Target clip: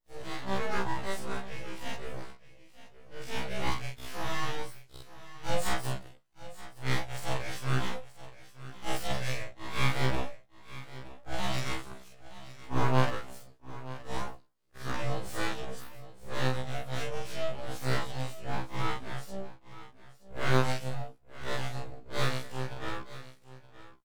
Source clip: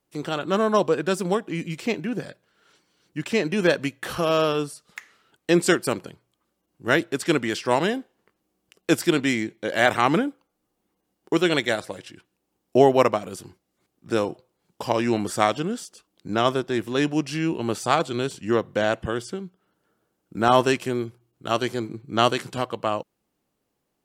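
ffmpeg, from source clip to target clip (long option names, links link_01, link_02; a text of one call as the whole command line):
ffmpeg -i in.wav -af "afftfilt=real='re':imag='-im':win_size=4096:overlap=0.75,bandreject=frequency=420:width=12,aeval=exprs='abs(val(0))':channel_layout=same,equalizer=frequency=120:width=3.6:gain=4.5,aecho=1:1:923:0.158,afftfilt=real='re*1.73*eq(mod(b,3),0)':imag='im*1.73*eq(mod(b,3),0)':win_size=2048:overlap=0.75,volume=-2dB" out.wav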